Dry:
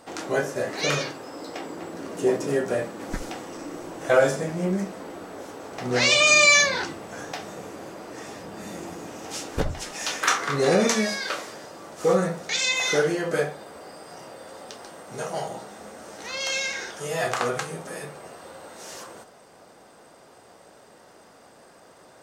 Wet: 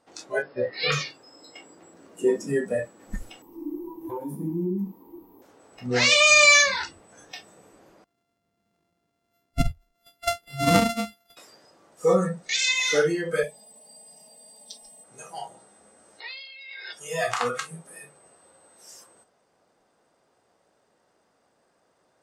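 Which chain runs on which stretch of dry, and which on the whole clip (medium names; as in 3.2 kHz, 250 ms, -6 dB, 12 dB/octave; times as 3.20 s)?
0.42–0.92 s: brick-wall FIR low-pass 5.3 kHz + doubling 16 ms -5 dB
3.42–5.42 s: FFT filter 160 Hz 0 dB, 350 Hz +8 dB, 640 Hz -16 dB, 950 Hz +8 dB, 1.4 kHz -21 dB, 2.2 kHz -13 dB, 7.6 kHz -13 dB, 15 kHz +14 dB + compression 10:1, threshold -23 dBFS
8.04–11.37 s: sorted samples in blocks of 64 samples + bass shelf 270 Hz +7.5 dB + upward expansion 2.5:1, over -31 dBFS
13.43–15.04 s: treble shelf 6 kHz +4 dB + static phaser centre 370 Hz, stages 6 + comb 4.7 ms, depth 95%
16.20–16.93 s: compressor with a negative ratio -38 dBFS + brick-wall FIR band-pass 330–5300 Hz
whole clip: Bessel low-pass 11 kHz, order 2; spectral noise reduction 17 dB; trim +1 dB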